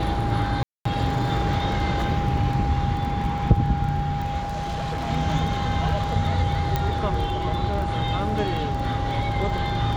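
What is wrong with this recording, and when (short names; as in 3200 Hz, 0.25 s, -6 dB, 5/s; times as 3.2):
crackle 15/s -29 dBFS
tone 810 Hz -28 dBFS
0.63–0.85 gap 0.224 s
4.42–5.1 clipped -24 dBFS
6.76 pop -10 dBFS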